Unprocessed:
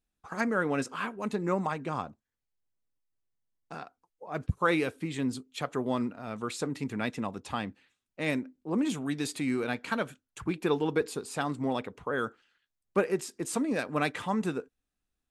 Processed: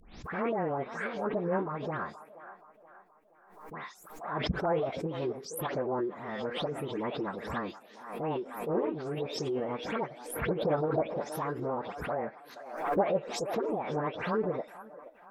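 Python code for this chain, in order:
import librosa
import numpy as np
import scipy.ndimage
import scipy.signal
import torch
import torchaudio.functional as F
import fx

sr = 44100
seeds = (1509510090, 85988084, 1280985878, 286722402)

y = fx.spec_delay(x, sr, highs='late', ms=241)
y = fx.env_lowpass_down(y, sr, base_hz=700.0, full_db=-28.5)
y = fx.high_shelf(y, sr, hz=8400.0, db=7.0)
y = fx.echo_wet_bandpass(y, sr, ms=475, feedback_pct=45, hz=730.0, wet_db=-13)
y = fx.formant_shift(y, sr, semitones=6)
y = fx.pre_swell(y, sr, db_per_s=68.0)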